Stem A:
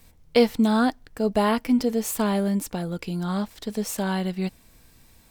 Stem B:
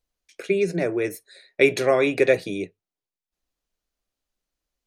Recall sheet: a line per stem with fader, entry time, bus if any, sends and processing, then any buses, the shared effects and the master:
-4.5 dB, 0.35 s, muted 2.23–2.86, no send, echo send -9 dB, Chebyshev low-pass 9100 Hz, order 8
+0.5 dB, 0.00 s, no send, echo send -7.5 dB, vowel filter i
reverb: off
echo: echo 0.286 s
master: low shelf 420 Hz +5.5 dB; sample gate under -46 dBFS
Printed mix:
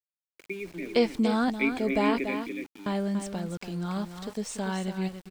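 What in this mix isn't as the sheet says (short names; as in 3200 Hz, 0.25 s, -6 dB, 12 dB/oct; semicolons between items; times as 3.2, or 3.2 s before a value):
stem A: entry 0.35 s -> 0.60 s; master: missing low shelf 420 Hz +5.5 dB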